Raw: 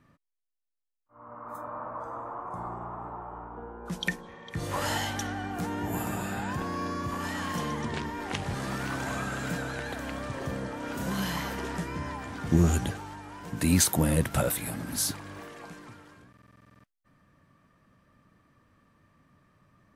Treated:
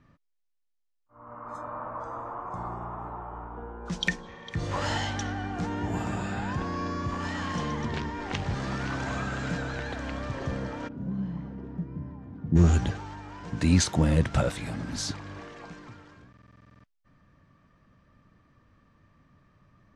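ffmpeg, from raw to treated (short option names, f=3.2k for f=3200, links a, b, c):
-filter_complex "[0:a]asettb=1/sr,asplit=3[a][b][c];[a]atrim=end=1.274[d];[b]atrim=start=1.27:end=4.55,asetpts=PTS-STARTPTS,afade=t=in:d=0.004:c=qsin,afade=t=out:st=3.276:d=0.004:c=qsin,highshelf=f=2.6k:g=7[e];[c]atrim=start=4.546[f];[d][e]acrossfade=d=0.004:c1=hsin:c2=qsin[g];[g][f]acrossfade=d=0.004:c1=qsin:c2=hsin,asplit=3[h][i][j];[h]afade=t=out:st=10.87:d=0.02[k];[i]bandpass=f=170:t=q:w=1.3,afade=t=in:st=10.87:d=0.02,afade=t=out:st=12.55:d=0.02[l];[j]afade=t=in:st=12.55:d=0.02[m];[k][l][m]amix=inputs=3:normalize=0,lowpass=f=6.6k:w=0.5412,lowpass=f=6.6k:w=1.3066,lowshelf=f=89:g=9"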